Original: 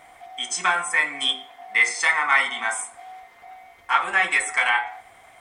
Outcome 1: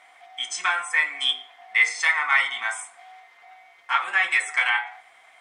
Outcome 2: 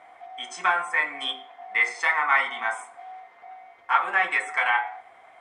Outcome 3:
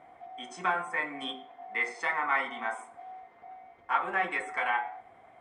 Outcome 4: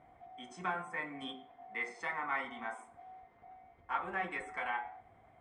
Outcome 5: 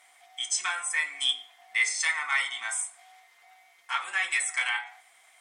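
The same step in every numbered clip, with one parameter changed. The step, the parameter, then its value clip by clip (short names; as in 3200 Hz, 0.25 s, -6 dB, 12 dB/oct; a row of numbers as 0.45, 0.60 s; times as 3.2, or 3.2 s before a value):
band-pass, frequency: 2700, 840, 290, 110, 7300 Hz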